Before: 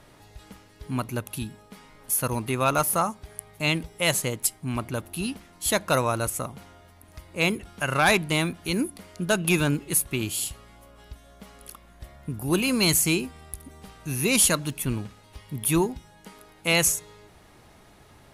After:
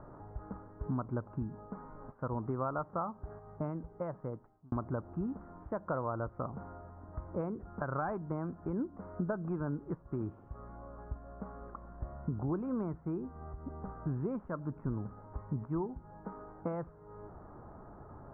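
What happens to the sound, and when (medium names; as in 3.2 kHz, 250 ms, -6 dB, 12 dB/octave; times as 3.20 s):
3.31–4.72 s: fade out
whole clip: compression 6:1, threshold -35 dBFS; steep low-pass 1.4 kHz 48 dB/octave; trim +3 dB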